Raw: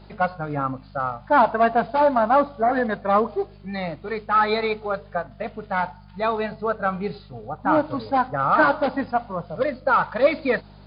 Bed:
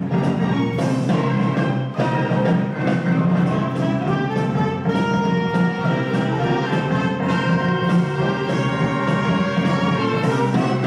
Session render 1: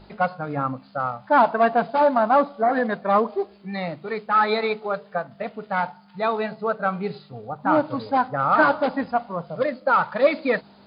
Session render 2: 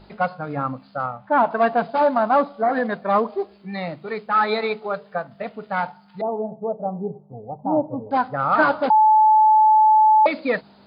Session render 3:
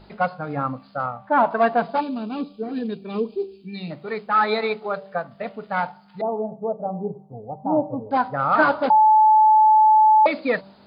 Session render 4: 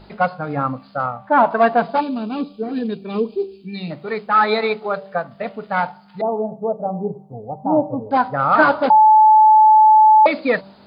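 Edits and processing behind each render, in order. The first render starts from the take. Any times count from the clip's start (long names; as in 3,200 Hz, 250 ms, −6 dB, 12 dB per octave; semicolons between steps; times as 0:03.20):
hum removal 50 Hz, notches 3
0:01.06–0:01.51: high-frequency loss of the air 320 metres; 0:06.21–0:08.11: Butterworth low-pass 890 Hz 48 dB per octave; 0:08.90–0:10.26: beep over 865 Hz −10.5 dBFS
0:02.00–0:03.91: gain on a spectral selection 490–2,300 Hz −19 dB; hum removal 193.8 Hz, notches 6
level +4 dB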